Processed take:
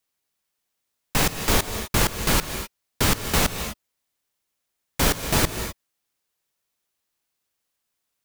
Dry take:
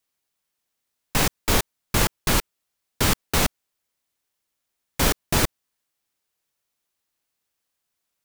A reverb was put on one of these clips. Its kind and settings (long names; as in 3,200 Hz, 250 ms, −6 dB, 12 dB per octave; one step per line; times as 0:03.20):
reverb whose tail is shaped and stops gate 280 ms rising, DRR 8.5 dB